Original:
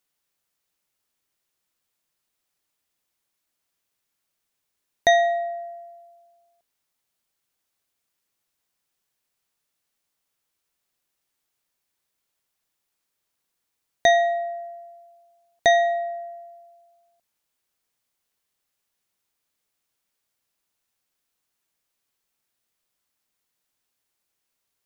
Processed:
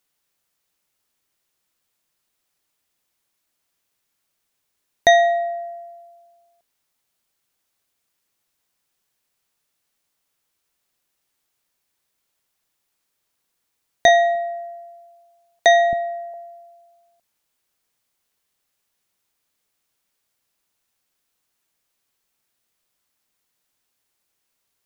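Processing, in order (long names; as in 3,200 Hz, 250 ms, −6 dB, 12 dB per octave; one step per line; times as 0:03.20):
0:14.08–0:16.34: multiband delay without the direct sound highs, lows 270 ms, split 290 Hz
level +4 dB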